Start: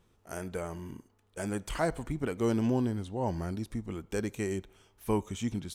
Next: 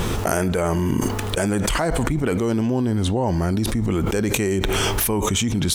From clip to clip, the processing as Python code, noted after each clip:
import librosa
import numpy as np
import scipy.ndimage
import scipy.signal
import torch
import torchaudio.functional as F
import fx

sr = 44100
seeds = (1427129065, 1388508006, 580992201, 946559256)

y = fx.env_flatten(x, sr, amount_pct=100)
y = F.gain(torch.from_numpy(y), 4.5).numpy()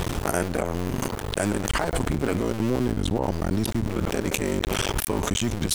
y = fx.cycle_switch(x, sr, every=2, mode='muted')
y = F.gain(torch.from_numpy(y), -1.5).numpy()